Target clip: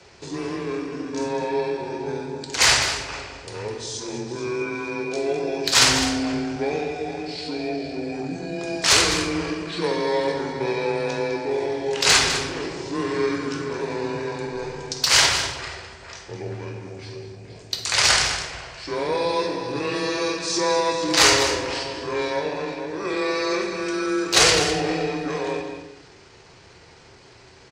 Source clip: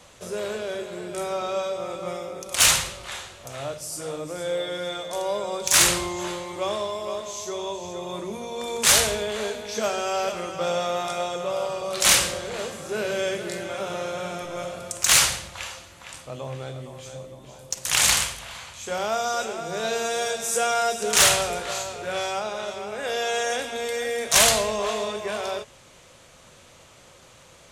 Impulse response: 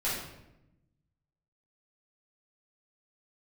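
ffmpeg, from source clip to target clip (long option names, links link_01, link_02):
-filter_complex "[0:a]asetrate=30296,aresample=44100,atempo=1.45565,afreqshift=21,aecho=1:1:205:0.299,asplit=2[link_01][link_02];[1:a]atrim=start_sample=2205,highshelf=frequency=9300:gain=5.5[link_03];[link_02][link_03]afir=irnorm=-1:irlink=0,volume=-9.5dB[link_04];[link_01][link_04]amix=inputs=2:normalize=0,volume=-1dB"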